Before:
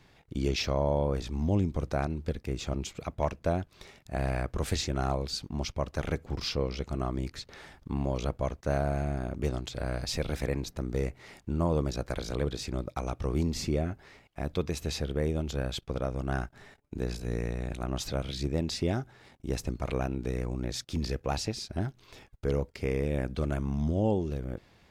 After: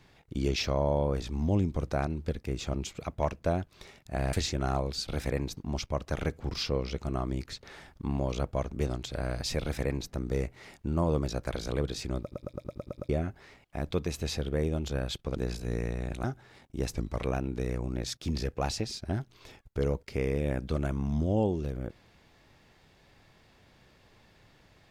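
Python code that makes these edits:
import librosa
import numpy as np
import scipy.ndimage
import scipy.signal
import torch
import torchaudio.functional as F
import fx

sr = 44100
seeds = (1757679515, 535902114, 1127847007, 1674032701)

y = fx.edit(x, sr, fx.cut(start_s=4.33, length_s=0.35),
    fx.cut(start_s=8.57, length_s=0.77),
    fx.duplicate(start_s=10.24, length_s=0.49, to_s=5.43),
    fx.stutter_over(start_s=12.84, slice_s=0.11, count=8),
    fx.cut(start_s=15.99, length_s=0.97),
    fx.cut(start_s=17.84, length_s=1.1),
    fx.speed_span(start_s=19.63, length_s=0.26, speed=0.91), tone=tone)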